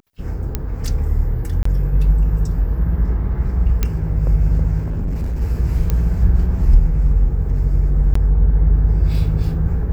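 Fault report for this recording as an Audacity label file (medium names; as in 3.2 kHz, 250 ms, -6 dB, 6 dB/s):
0.550000	0.550000	pop -7 dBFS
1.630000	1.650000	dropout 24 ms
3.830000	3.830000	pop -5 dBFS
4.830000	5.420000	clipped -18 dBFS
5.900000	5.900000	pop -7 dBFS
8.140000	8.150000	dropout 14 ms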